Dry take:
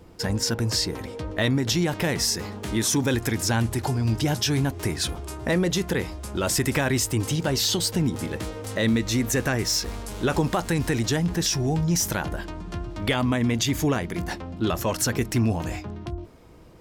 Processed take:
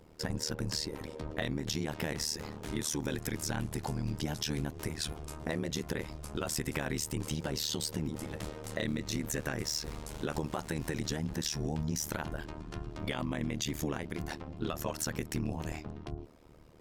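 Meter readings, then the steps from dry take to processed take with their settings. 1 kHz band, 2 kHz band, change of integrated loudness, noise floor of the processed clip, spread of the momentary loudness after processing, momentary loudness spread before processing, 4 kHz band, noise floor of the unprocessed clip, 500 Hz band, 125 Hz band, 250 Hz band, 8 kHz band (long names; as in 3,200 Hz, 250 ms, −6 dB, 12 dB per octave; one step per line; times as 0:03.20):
−11.0 dB, −11.5 dB, −11.0 dB, −49 dBFS, 7 LU, 9 LU, −11.0 dB, −39 dBFS, −11.0 dB, −12.0 dB, −11.5 dB, −11.0 dB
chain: downward compressor, threshold −23 dBFS, peak gain reduction 5.5 dB
amplitude modulation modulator 76 Hz, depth 95%
level −4 dB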